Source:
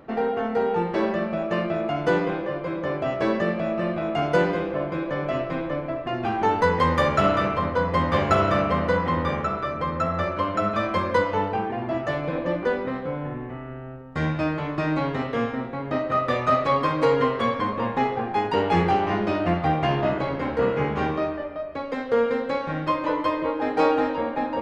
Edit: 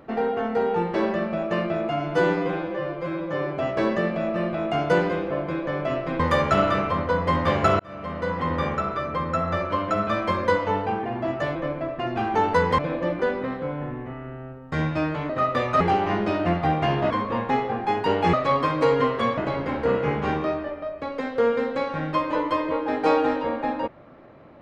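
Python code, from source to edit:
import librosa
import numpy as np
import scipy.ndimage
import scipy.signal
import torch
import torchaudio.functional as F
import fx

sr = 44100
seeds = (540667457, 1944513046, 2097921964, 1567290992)

y = fx.edit(x, sr, fx.stretch_span(start_s=1.89, length_s=1.13, factor=1.5),
    fx.move(start_s=5.63, length_s=1.23, to_s=12.22),
    fx.fade_in_span(start_s=8.46, length_s=0.83),
    fx.cut(start_s=14.73, length_s=1.3),
    fx.swap(start_s=16.54, length_s=1.04, other_s=18.81, other_length_s=1.3), tone=tone)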